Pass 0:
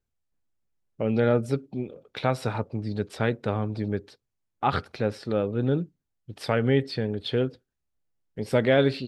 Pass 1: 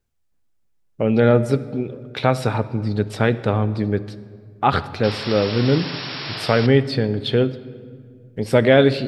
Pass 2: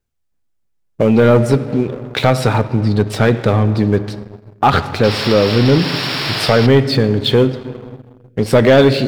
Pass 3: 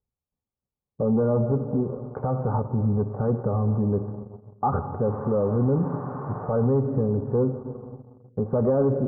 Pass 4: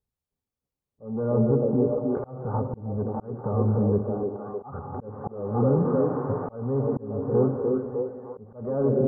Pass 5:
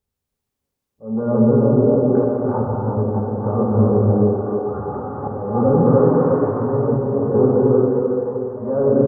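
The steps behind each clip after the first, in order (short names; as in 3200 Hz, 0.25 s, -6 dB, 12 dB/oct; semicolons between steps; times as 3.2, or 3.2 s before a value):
painted sound noise, 5.03–6.67, 290–5600 Hz -38 dBFS; on a send at -15 dB: reverb RT60 2.0 s, pre-delay 26 ms; on the sum: gain +7 dB
sample leveller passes 2; in parallel at -1.5 dB: compressor, threshold -17 dBFS, peak gain reduction 11 dB; on the sum: gain -2.5 dB
steep low-pass 1200 Hz 48 dB/oct; limiter -7.5 dBFS, peak gain reduction 6.5 dB; notch comb 330 Hz; gain -6.5 dB
on a send: delay with a stepping band-pass 0.305 s, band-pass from 350 Hz, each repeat 0.7 oct, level -0.5 dB; on the sum: auto swell 0.428 s
low shelf 140 Hz -3.5 dB; echo 0.712 s -16.5 dB; non-linear reverb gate 0.46 s flat, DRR -2.5 dB; gain +5 dB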